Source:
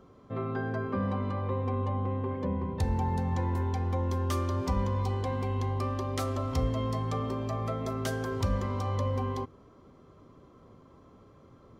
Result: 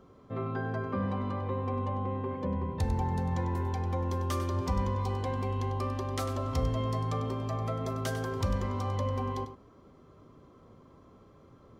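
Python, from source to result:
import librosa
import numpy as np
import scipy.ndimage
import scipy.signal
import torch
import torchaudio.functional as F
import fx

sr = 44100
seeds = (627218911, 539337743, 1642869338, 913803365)

y = x + 10.0 ** (-11.0 / 20.0) * np.pad(x, (int(98 * sr / 1000.0), 0))[:len(x)]
y = F.gain(torch.from_numpy(y), -1.0).numpy()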